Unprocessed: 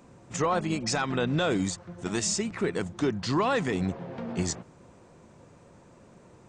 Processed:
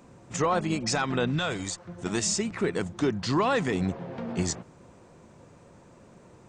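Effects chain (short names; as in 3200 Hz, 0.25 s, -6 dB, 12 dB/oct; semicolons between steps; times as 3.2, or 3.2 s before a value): 1.3–1.83 bell 670 Hz -> 94 Hz -12.5 dB 1.2 oct; gain +1 dB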